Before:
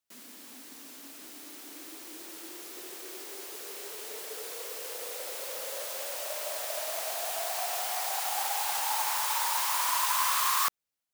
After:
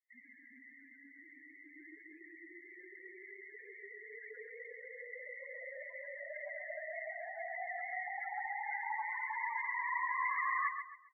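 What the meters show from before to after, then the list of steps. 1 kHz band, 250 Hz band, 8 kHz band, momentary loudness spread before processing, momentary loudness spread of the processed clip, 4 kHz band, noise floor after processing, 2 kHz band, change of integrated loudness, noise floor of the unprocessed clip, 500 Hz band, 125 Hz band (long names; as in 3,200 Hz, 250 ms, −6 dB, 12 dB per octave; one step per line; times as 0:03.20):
−7.0 dB, −9.0 dB, below −40 dB, 18 LU, 21 LU, below −40 dB, −60 dBFS, 0.0 dB, −9.5 dB, −50 dBFS, −8.0 dB, can't be measured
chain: gate on every frequency bin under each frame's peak −25 dB strong
low-pass with resonance 2,000 Hz, resonance Q 7.2
spectral peaks only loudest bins 8
repeating echo 134 ms, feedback 31%, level −7.5 dB
level −7 dB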